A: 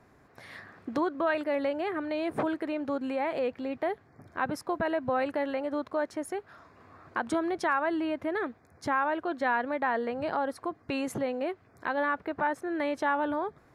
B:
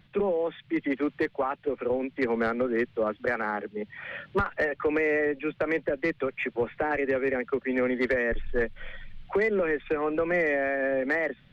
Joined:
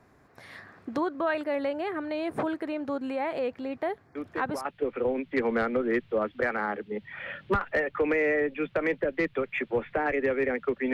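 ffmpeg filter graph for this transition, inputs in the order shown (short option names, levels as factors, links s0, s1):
-filter_complex "[1:a]asplit=2[s0][s1];[0:a]apad=whole_dur=10.93,atrim=end=10.93,atrim=end=4.652[s2];[s1]atrim=start=1.498:end=7.78[s3];[s0]atrim=start=1:end=1.5,asetpts=PTS-STARTPTS,volume=0.376,afade=t=in:d=0.004:c=hsin,afade=t=out:st=0.496:d=0.004:c=hsin,adelay=4150[s4];[s2][s3]acrossfade=d=0.004:c1=hsin:c2=hsin[s5];[s5][s4]amix=inputs=2:normalize=0"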